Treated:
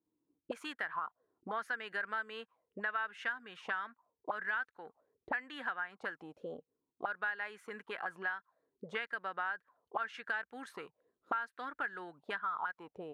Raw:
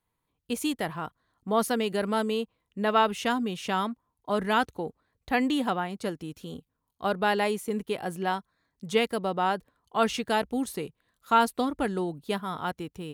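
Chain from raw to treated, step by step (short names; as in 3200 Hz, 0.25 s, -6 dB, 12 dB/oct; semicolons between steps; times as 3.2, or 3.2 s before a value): auto-wah 310–1600 Hz, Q 6.9, up, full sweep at -27 dBFS; compressor 6:1, threshold -46 dBFS, peak gain reduction 18 dB; gain +11.5 dB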